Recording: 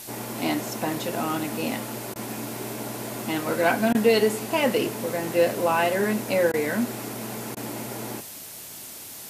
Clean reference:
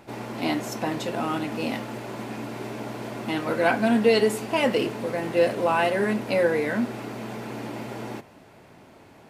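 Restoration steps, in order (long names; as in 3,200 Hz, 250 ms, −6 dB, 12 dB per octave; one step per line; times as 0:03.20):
repair the gap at 0:02.14/0:03.93/0:06.52/0:07.55, 16 ms
noise reduction from a noise print 10 dB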